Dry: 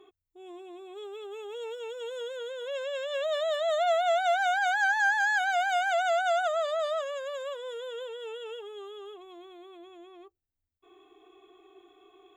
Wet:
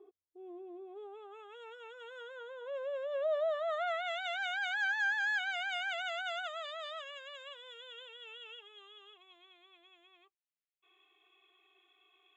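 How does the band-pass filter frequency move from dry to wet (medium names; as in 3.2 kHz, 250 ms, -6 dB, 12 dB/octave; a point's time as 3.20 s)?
band-pass filter, Q 1.8
0.81 s 450 Hz
1.50 s 1.5 kHz
2.17 s 1.5 kHz
2.83 s 760 Hz
3.41 s 760 Hz
4.18 s 2.6 kHz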